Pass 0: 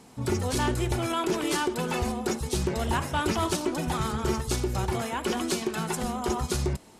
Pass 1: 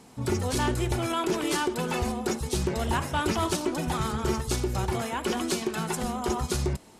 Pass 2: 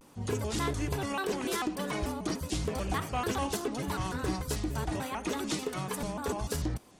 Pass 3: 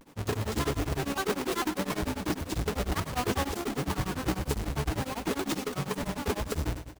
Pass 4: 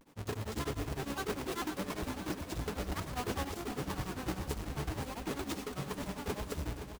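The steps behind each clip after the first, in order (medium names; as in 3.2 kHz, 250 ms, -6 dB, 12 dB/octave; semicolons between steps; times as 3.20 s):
no audible change
vibrato with a chosen wave square 3.4 Hz, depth 250 cents; trim -5 dB
square wave that keeps the level; on a send: feedback delay 120 ms, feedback 45%, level -12.5 dB; on the sum: tremolo of two beating tones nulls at 10 Hz
feedback delay 518 ms, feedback 53%, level -10 dB; trim -7.5 dB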